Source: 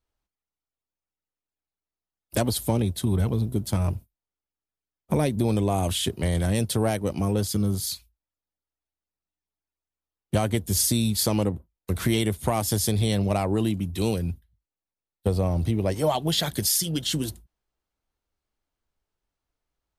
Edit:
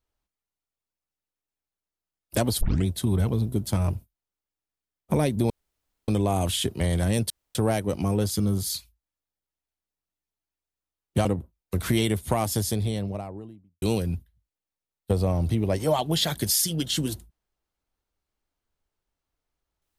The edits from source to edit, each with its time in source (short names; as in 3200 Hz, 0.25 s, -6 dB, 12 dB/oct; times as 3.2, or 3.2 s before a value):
2.61 tape start 0.25 s
5.5 insert room tone 0.58 s
6.72 insert room tone 0.25 s
10.42–11.41 cut
12.43–13.98 studio fade out